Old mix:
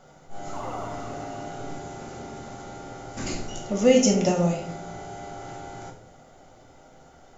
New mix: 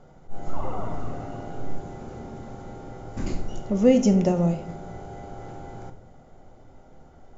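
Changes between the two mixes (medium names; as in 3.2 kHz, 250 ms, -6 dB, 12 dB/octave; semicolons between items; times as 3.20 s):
speech: send -9.0 dB; master: add tilt EQ -3 dB/octave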